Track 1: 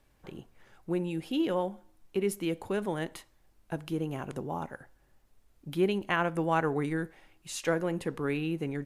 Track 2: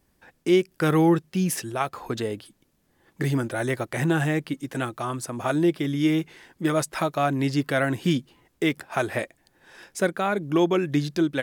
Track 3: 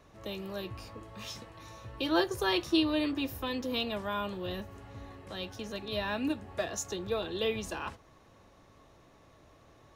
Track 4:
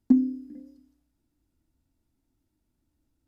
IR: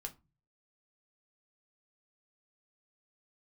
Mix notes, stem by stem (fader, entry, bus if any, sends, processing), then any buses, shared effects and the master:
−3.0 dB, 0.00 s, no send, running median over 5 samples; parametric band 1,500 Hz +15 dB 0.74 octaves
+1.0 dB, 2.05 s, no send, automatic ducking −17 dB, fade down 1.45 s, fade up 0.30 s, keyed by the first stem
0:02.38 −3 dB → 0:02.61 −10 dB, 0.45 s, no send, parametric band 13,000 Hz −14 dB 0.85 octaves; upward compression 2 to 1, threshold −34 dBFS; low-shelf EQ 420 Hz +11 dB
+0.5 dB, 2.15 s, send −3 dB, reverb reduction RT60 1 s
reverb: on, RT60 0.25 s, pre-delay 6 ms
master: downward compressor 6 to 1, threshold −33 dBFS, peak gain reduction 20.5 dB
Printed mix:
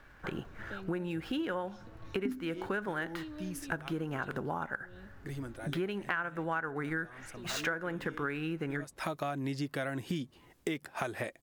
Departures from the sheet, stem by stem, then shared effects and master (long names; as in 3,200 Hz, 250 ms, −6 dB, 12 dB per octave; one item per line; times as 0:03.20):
stem 1 −3.0 dB → +7.5 dB
stem 3 −3.0 dB → −13.5 dB